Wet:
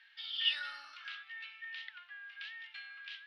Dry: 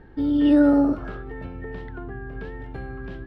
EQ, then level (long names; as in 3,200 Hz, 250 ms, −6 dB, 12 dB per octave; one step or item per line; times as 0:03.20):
inverse Chebyshev high-pass filter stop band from 470 Hz, stop band 80 dB
high-frequency loss of the air 260 metres
+17.5 dB